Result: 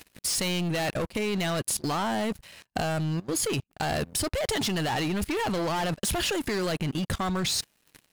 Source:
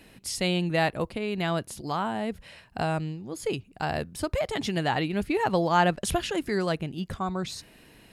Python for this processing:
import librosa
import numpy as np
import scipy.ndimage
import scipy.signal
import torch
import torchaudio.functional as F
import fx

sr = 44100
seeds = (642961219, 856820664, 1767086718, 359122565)

y = fx.high_shelf(x, sr, hz=2600.0, db=8.0)
y = fx.leveller(y, sr, passes=5)
y = fx.level_steps(y, sr, step_db=21)
y = F.gain(torch.from_numpy(y), -6.5).numpy()